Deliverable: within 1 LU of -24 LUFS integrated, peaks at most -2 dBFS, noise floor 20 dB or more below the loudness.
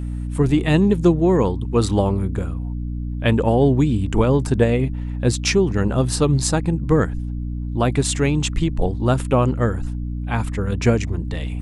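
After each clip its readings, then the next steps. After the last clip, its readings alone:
hum 60 Hz; harmonics up to 300 Hz; hum level -23 dBFS; loudness -20.0 LUFS; peak -2.5 dBFS; loudness target -24.0 LUFS
-> notches 60/120/180/240/300 Hz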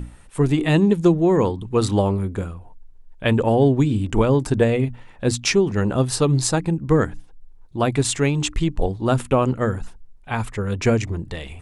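hum none; loudness -20.5 LUFS; peak -3.0 dBFS; loudness target -24.0 LUFS
-> gain -3.5 dB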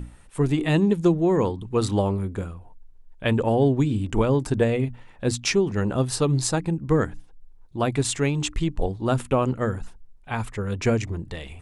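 loudness -24.0 LUFS; peak -6.5 dBFS; noise floor -48 dBFS

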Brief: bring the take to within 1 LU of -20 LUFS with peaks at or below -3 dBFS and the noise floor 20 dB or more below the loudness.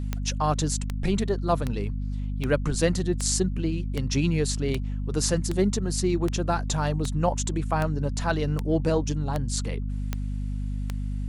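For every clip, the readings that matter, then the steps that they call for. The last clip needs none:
clicks 15; hum 50 Hz; harmonics up to 250 Hz; hum level -26 dBFS; loudness -27.0 LUFS; peak -8.5 dBFS; loudness target -20.0 LUFS
-> de-click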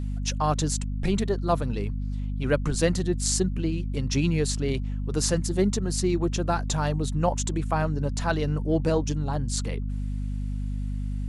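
clicks 0; hum 50 Hz; harmonics up to 250 Hz; hum level -26 dBFS
-> notches 50/100/150/200/250 Hz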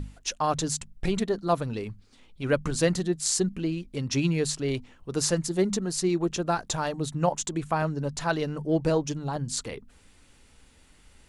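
hum none; loudness -28.0 LUFS; peak -9.5 dBFS; loudness target -20.0 LUFS
-> gain +8 dB; limiter -3 dBFS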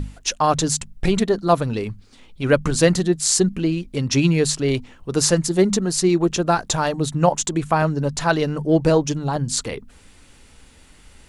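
loudness -20.0 LUFS; peak -3.0 dBFS; noise floor -49 dBFS

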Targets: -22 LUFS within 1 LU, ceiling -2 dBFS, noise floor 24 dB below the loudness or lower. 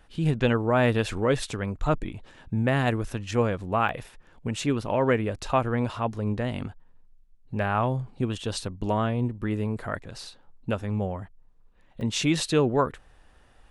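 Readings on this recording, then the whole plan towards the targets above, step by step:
dropouts 3; longest dropout 2.0 ms; loudness -27.0 LUFS; peak -9.0 dBFS; loudness target -22.0 LUFS
-> interpolate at 3.89/5.42/12.01, 2 ms; gain +5 dB

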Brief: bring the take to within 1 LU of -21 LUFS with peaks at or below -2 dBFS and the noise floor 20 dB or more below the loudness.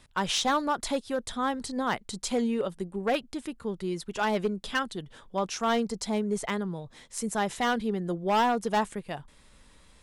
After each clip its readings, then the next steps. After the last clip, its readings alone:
clipped 1.4%; flat tops at -20.0 dBFS; loudness -29.5 LUFS; peak -20.0 dBFS; loudness target -21.0 LUFS
-> clip repair -20 dBFS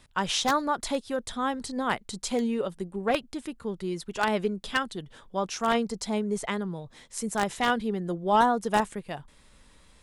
clipped 0.0%; loudness -28.5 LUFS; peak -11.0 dBFS; loudness target -21.0 LUFS
-> gain +7.5 dB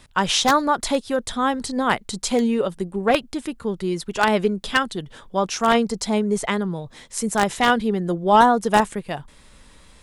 loudness -21.0 LUFS; peak -3.5 dBFS; noise floor -50 dBFS

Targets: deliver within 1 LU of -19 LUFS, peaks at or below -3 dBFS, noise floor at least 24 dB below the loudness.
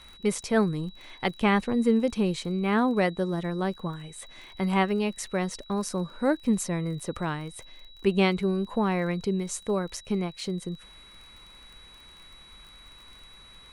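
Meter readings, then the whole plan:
ticks 27/s; steady tone 3900 Hz; tone level -50 dBFS; loudness -27.5 LUFS; peak -9.5 dBFS; loudness target -19.0 LUFS
-> de-click; notch 3900 Hz, Q 30; gain +8.5 dB; limiter -3 dBFS

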